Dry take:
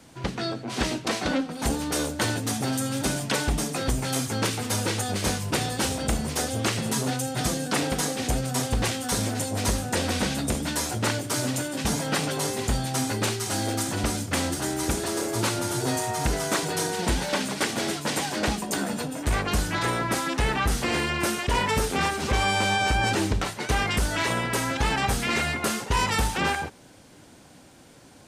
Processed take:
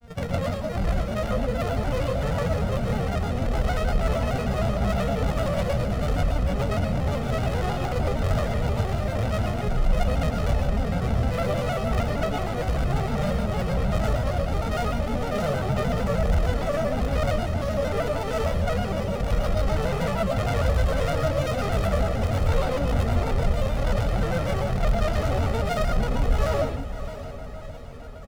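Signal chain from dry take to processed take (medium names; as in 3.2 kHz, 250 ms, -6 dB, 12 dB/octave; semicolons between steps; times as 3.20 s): sorted samples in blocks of 128 samples; tilt EQ -2.5 dB/octave; hum notches 50/100/150/200/250/300/350 Hz; granulator 100 ms, grains 20 per s, pitch spread up and down by 12 st; hard clipper -26 dBFS, distortion -6 dB; comb 1.5 ms, depth 73%; echo that smears into a reverb 629 ms, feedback 52%, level -12 dB; reverberation RT60 0.35 s, pre-delay 105 ms, DRR 3.5 dB; vibrato with a chosen wave square 6.5 Hz, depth 100 cents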